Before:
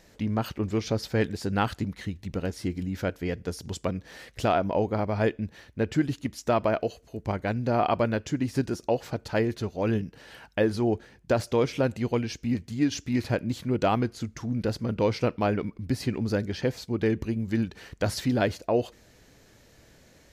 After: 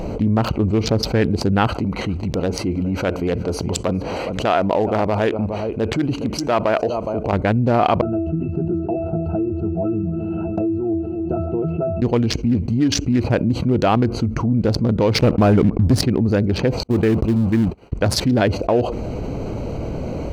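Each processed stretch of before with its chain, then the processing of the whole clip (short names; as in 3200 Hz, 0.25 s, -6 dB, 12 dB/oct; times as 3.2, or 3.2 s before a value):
1.67–7.33 transient shaper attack -5 dB, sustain +1 dB + low shelf 320 Hz -12 dB + echo 0.415 s -18 dB
8.01–12.02 octave resonator E, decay 0.3 s + multi-head echo 0.135 s, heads first and second, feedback 49%, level -23 dB + three-band squash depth 100%
15.15–16.01 low shelf 370 Hz +8 dB + sample leveller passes 2
16.83–17.92 zero-crossing step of -33.5 dBFS + gate -33 dBFS, range -56 dB
whole clip: Wiener smoothing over 25 samples; high shelf 9500 Hz -3.5 dB; fast leveller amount 70%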